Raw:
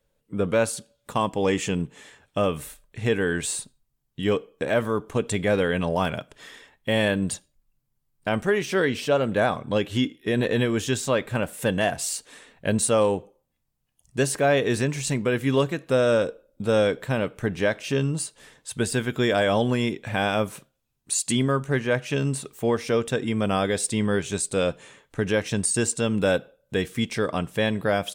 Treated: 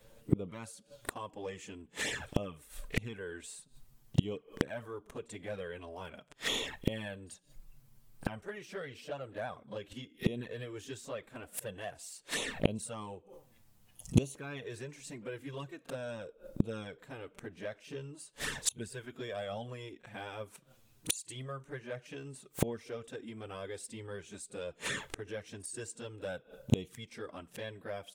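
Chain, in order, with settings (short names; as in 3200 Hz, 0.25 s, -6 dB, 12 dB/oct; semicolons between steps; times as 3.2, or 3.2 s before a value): flipped gate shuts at -28 dBFS, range -32 dB; envelope flanger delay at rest 11 ms, full sweep at -44 dBFS; pre-echo 38 ms -19.5 dB; gain +16 dB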